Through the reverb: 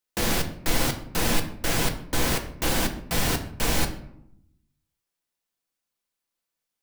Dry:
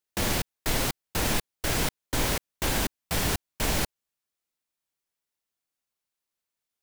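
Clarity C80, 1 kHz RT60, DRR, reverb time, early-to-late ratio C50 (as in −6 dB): 14.0 dB, 0.70 s, 4.5 dB, 0.75 s, 11.0 dB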